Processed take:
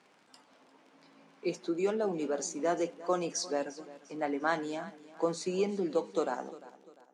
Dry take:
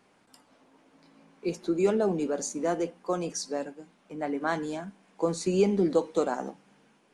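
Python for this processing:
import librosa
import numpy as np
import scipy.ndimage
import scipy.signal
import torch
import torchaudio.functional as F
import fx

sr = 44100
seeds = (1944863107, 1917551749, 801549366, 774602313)

y = fx.fade_out_tail(x, sr, length_s=1.82)
y = fx.low_shelf(y, sr, hz=270.0, db=-8.0)
y = fx.rider(y, sr, range_db=10, speed_s=0.5)
y = fx.dmg_crackle(y, sr, seeds[0], per_s=35.0, level_db=-48.0)
y = fx.bandpass_edges(y, sr, low_hz=120.0, high_hz=7000.0)
y = fx.echo_feedback(y, sr, ms=349, feedback_pct=39, wet_db=-18)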